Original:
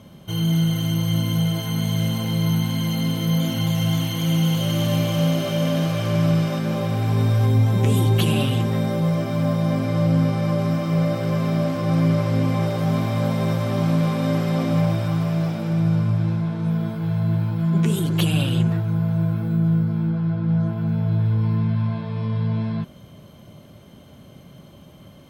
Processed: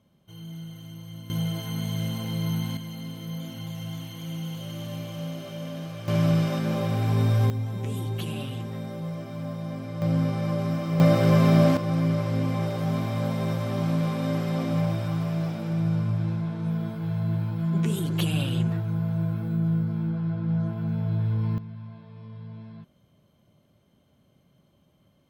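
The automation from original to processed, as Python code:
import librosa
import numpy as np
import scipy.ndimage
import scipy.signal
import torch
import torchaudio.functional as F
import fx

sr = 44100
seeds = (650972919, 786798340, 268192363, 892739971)

y = fx.gain(x, sr, db=fx.steps((0.0, -19.5), (1.3, -7.0), (2.77, -14.0), (6.08, -3.0), (7.5, -12.5), (10.02, -5.5), (11.0, 3.5), (11.77, -5.5), (21.58, -18.0)))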